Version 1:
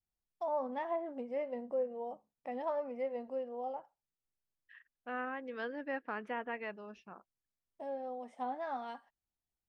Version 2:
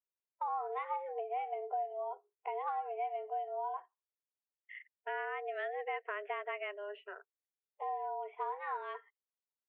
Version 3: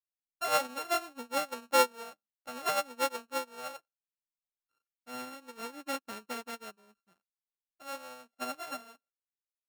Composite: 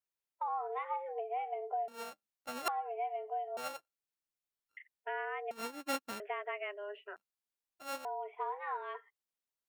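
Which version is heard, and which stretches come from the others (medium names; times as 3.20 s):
2
1.88–2.68 s: from 3
3.57–4.77 s: from 3
5.51–6.20 s: from 3
7.16–8.05 s: from 3
not used: 1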